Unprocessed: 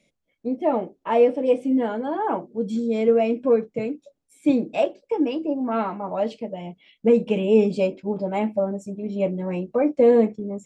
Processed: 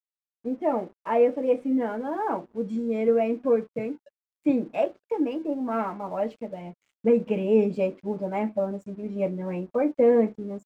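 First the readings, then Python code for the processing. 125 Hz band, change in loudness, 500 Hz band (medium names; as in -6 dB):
-4.0 dB, -3.5 dB, -3.5 dB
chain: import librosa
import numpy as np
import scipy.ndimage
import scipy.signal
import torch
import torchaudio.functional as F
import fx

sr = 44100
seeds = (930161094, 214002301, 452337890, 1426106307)

y = fx.high_shelf_res(x, sr, hz=2700.0, db=-7.5, q=1.5)
y = np.sign(y) * np.maximum(np.abs(y) - 10.0 ** (-52.5 / 20.0), 0.0)
y = y * librosa.db_to_amplitude(-3.5)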